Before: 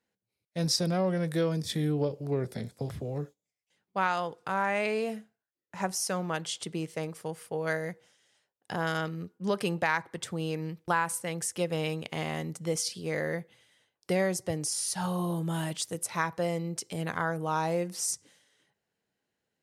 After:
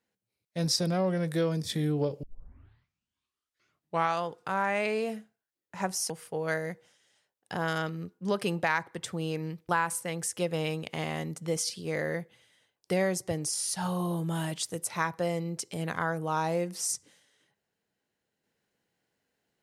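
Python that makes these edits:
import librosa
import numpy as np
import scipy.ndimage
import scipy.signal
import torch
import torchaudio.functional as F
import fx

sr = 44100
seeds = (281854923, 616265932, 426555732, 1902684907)

y = fx.edit(x, sr, fx.tape_start(start_s=2.23, length_s=2.02),
    fx.cut(start_s=6.1, length_s=1.19), tone=tone)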